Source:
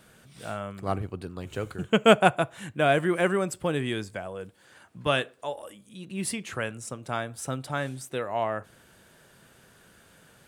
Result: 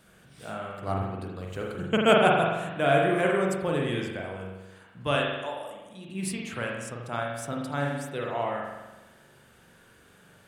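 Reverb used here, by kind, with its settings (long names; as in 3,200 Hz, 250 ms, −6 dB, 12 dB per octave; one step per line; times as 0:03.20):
spring reverb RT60 1.1 s, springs 42 ms, chirp 40 ms, DRR −1.5 dB
level −3.5 dB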